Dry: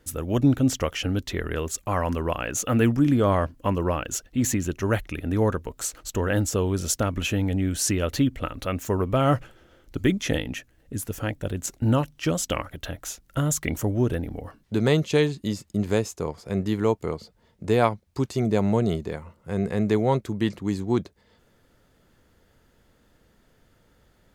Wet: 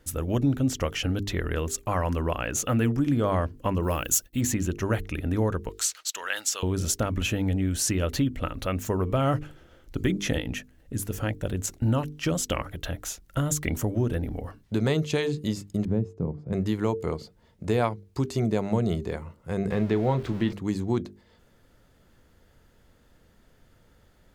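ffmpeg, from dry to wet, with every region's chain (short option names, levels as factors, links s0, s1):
-filter_complex "[0:a]asettb=1/sr,asplit=3[s0][s1][s2];[s0]atrim=end=3.834[s3];[s1]atrim=start=3.83:end=4.41,asetpts=PTS-STARTPTS,afade=t=in:d=0.004:c=qsin,afade=t=out:st=0.576:d=0.004:c=qsin,agate=range=0.0224:threshold=0.00562:ratio=3:release=100:detection=peak,aemphasis=mode=production:type=75fm,acompressor=mode=upward:threshold=0.01:ratio=2.5:attack=3.2:release=140:knee=2.83:detection=peak[s4];[s2]atrim=start=4.406[s5];[s3][s4]acrossfade=d=0.004:c1=hsin:c2=qsin[s6];[s6][s5]acrossfade=d=0.004:c1=qsin:c2=hsin,asettb=1/sr,asplit=3[s7][s8][s9];[s7]atrim=end=5.694[s10];[s8]atrim=start=5.69:end=6.63,asetpts=PTS-STARTPTS,afade=t=in:d=0.004:c=qsin,afade=t=out:st=0.936:d=0.004:c=qsin,highpass=1200,equalizer=f=4300:t=o:w=1.8:g=8[s11];[s9]atrim=start=6.626[s12];[s10][s11]acrossfade=d=0.004:c1=hsin:c2=qsin[s13];[s13][s12]acrossfade=d=0.004:c1=qsin:c2=hsin,asettb=1/sr,asplit=3[s14][s15][s16];[s14]atrim=end=15.854[s17];[s15]atrim=start=15.85:end=16.53,asetpts=PTS-STARTPTS,afade=t=in:d=0.004:c=qsin,afade=t=out:st=0.676:d=0.004:c=qsin,bandpass=f=160:t=q:w=1.4,acontrast=76[s18];[s16]atrim=start=16.526[s19];[s17][s18]acrossfade=d=0.004:c1=hsin:c2=qsin[s20];[s20][s19]acrossfade=d=0.004:c1=qsin:c2=hsin,asettb=1/sr,asplit=3[s21][s22][s23];[s21]atrim=end=19.714[s24];[s22]atrim=start=19.71:end=20.53,asetpts=PTS-STARTPTS,afade=t=in:d=0.004:c=qsin,afade=t=out:st=0.816:d=0.004:c=qsin,aeval=exprs='val(0)+0.5*0.0188*sgn(val(0))':c=same,acrossover=split=4700[s25][s26];[s26]acompressor=threshold=0.00112:ratio=4:attack=1:release=60[s27];[s25][s27]amix=inputs=2:normalize=0,asplit=2[s28][s29];[s29]adelay=31,volume=0.237[s30];[s28][s30]amix=inputs=2:normalize=0,atrim=end_sample=36162[s31];[s23]atrim=start=20.526[s32];[s24][s31]acrossfade=d=0.004:c1=hsin:c2=qsin[s33];[s33][s32]acrossfade=d=0.004:c1=qsin:c2=hsin,lowshelf=f=140:g=4.5,bandreject=f=50:t=h:w=6,bandreject=f=100:t=h:w=6,bandreject=f=150:t=h:w=6,bandreject=f=200:t=h:w=6,bandreject=f=250:t=h:w=6,bandreject=f=300:t=h:w=6,bandreject=f=350:t=h:w=6,bandreject=f=400:t=h:w=6,bandreject=f=450:t=h:w=6,acompressor=threshold=0.0708:ratio=2"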